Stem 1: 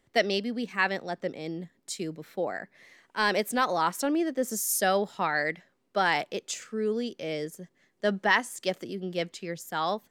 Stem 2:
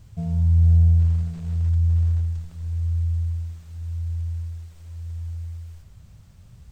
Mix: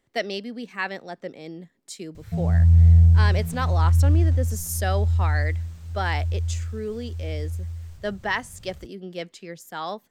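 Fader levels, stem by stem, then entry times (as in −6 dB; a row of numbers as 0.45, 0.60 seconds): −2.5, +2.0 decibels; 0.00, 2.15 seconds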